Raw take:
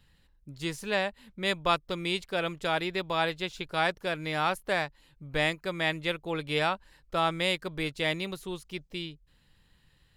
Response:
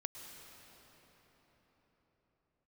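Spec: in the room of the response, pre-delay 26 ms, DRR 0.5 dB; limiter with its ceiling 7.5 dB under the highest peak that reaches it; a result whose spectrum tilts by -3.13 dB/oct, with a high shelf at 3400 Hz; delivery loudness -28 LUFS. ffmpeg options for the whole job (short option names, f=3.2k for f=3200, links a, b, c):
-filter_complex "[0:a]highshelf=f=3.4k:g=-4,alimiter=limit=-20dB:level=0:latency=1,asplit=2[a][b];[1:a]atrim=start_sample=2205,adelay=26[c];[b][c]afir=irnorm=-1:irlink=0,volume=1.5dB[d];[a][d]amix=inputs=2:normalize=0,volume=2.5dB"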